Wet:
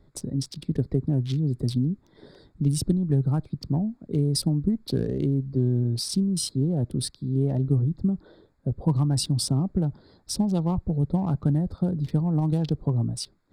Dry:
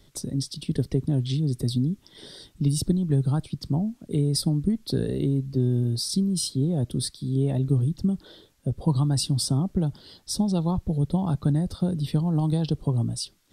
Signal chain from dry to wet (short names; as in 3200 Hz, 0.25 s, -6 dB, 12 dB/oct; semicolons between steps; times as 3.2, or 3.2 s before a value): Wiener smoothing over 15 samples